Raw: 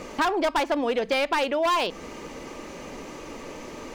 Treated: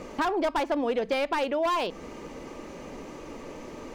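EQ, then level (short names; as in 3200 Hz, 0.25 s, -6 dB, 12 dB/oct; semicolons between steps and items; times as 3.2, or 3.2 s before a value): tilt shelf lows +3 dB, about 1200 Hz; -4.0 dB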